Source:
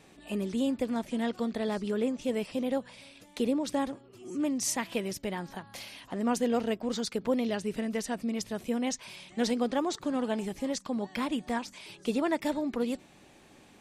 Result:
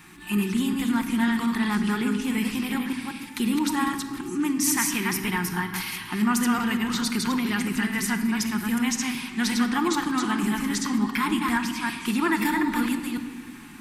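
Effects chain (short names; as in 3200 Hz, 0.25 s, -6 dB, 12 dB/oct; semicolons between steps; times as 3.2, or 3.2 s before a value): reverse delay 0.183 s, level -3.5 dB; EQ curve 350 Hz 0 dB, 560 Hz -29 dB, 850 Hz +1 dB, 1300 Hz +7 dB, 2000 Hz +6 dB, 3500 Hz 0 dB, 7100 Hz +1 dB, 13000 Hz +12 dB; in parallel at +1 dB: limiter -24.5 dBFS, peak gain reduction 11 dB; on the sum: shoebox room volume 1900 m³, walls mixed, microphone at 0.92 m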